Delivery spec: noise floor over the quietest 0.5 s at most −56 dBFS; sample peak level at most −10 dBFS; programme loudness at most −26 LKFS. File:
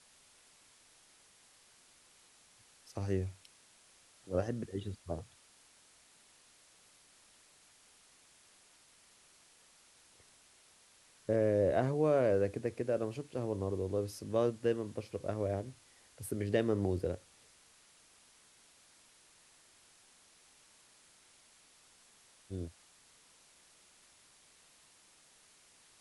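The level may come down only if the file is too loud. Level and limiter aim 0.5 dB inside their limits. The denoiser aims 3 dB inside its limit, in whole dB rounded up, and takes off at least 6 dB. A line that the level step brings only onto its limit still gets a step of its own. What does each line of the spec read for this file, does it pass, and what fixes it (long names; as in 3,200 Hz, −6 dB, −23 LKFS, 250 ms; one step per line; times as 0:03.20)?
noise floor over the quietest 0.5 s −64 dBFS: in spec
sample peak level −17.5 dBFS: in spec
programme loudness −35.0 LKFS: in spec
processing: no processing needed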